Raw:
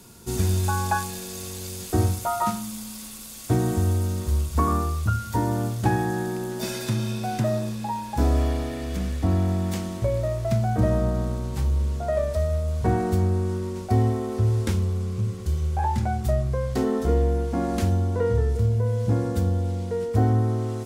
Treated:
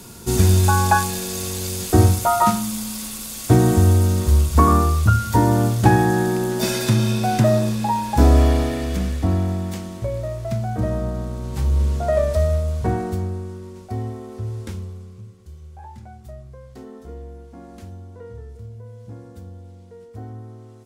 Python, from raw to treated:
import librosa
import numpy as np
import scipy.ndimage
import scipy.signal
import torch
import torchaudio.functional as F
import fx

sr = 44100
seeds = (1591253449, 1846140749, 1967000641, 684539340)

y = fx.gain(x, sr, db=fx.line((8.61, 8.0), (9.79, -1.5), (11.31, -1.5), (11.81, 5.5), (12.48, 5.5), (13.54, -7.0), (14.78, -7.0), (15.35, -15.5)))